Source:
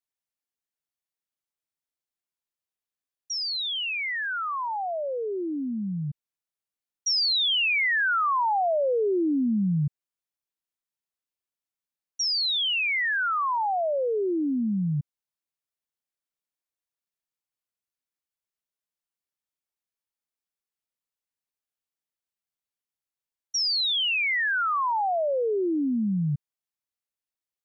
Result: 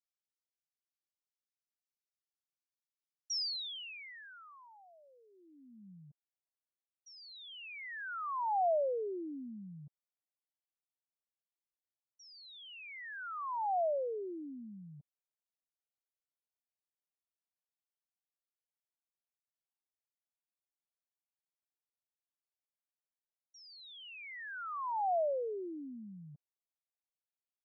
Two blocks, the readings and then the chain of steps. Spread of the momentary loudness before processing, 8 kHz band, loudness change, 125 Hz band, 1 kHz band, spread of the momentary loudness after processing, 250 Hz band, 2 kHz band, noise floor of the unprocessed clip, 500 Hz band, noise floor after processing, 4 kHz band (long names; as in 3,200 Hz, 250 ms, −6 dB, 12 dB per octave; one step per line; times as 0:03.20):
9 LU, can't be measured, −13.0 dB, −25.0 dB, −10.5 dB, 21 LU, −20.5 dB, −20.5 dB, below −85 dBFS, −9.5 dB, below −85 dBFS, −19.5 dB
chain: band-pass filter sweep 5,300 Hz → 680 Hz, 0:05.30–0:05.90
level −5.5 dB